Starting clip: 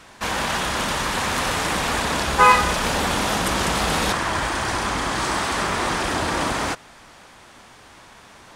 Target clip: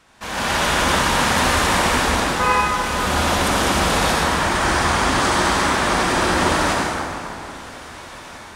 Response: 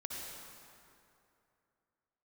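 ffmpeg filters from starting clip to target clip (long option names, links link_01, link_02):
-filter_complex "[0:a]dynaudnorm=framelen=140:gausssize=5:maxgain=14.5dB[link_01];[1:a]atrim=start_sample=2205[link_02];[link_01][link_02]afir=irnorm=-1:irlink=0,volume=-4.5dB"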